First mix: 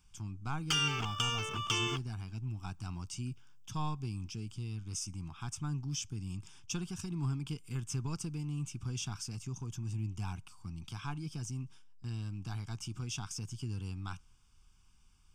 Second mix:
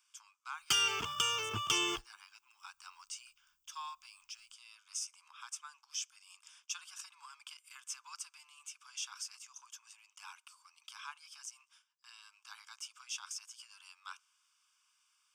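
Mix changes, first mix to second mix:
speech: add steep high-pass 1000 Hz 48 dB/oct; background: add high shelf 8300 Hz +11.5 dB

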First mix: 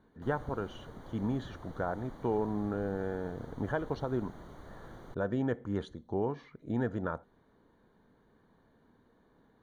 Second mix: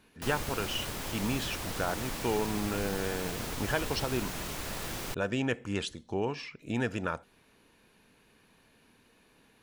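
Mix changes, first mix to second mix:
background +9.0 dB; master: remove running mean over 17 samples

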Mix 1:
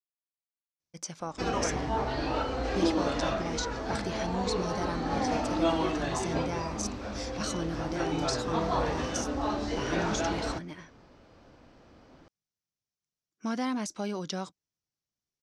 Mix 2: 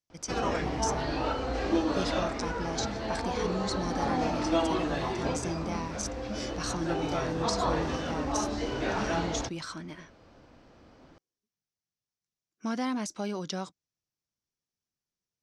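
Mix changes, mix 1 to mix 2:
speech: entry -0.80 s; background: entry -1.10 s

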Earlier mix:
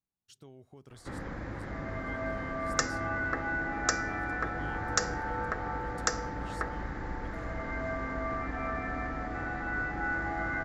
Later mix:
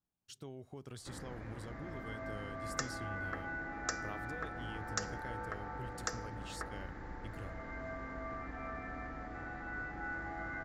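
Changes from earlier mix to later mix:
speech +4.0 dB; background -9.0 dB

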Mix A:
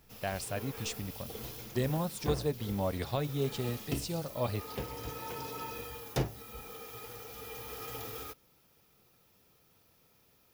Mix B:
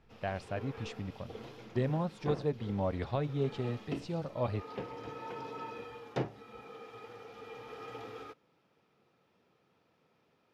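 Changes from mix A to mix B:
background: add HPF 160 Hz 12 dB/oct; master: add Bessel low-pass 2200 Hz, order 2

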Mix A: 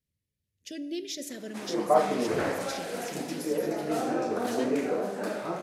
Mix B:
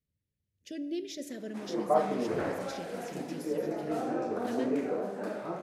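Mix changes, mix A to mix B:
background -3.0 dB; master: add high shelf 2200 Hz -9 dB

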